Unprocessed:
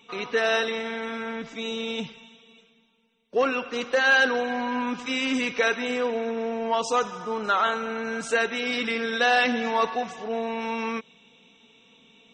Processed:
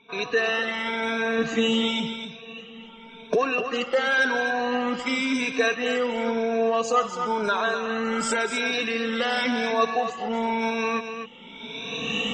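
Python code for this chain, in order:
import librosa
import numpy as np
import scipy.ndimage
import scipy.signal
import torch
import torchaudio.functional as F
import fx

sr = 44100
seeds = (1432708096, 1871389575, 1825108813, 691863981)

p1 = fx.spec_ripple(x, sr, per_octave=1.6, drift_hz=0.94, depth_db=15)
p2 = fx.recorder_agc(p1, sr, target_db=-13.5, rise_db_per_s=22.0, max_gain_db=30)
p3 = fx.env_lowpass(p2, sr, base_hz=2700.0, full_db=-18.0)
p4 = fx.doubler(p3, sr, ms=13.0, db=-3.0, at=(1.37, 1.88))
p5 = p4 + fx.echo_single(p4, sr, ms=251, db=-8.5, dry=0)
y = p5 * librosa.db_to_amplitude(-3.5)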